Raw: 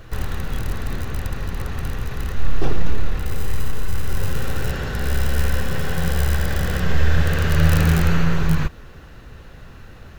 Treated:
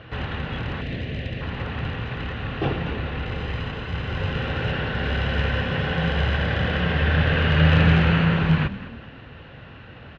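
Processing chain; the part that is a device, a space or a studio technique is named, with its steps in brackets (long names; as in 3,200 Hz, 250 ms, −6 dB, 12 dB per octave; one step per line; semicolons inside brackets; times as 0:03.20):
0:00.81–0:01.41: flat-topped bell 1,100 Hz −14 dB 1.1 octaves
frequency-shifting delay pedal into a guitar cabinet (echo with shifted repeats 209 ms, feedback 34%, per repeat +34 Hz, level −15.5 dB; loudspeaker in its box 100–3,400 Hz, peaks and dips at 190 Hz −3 dB, 380 Hz −4 dB, 1,200 Hz −3 dB, 2,900 Hz +5 dB)
level +3 dB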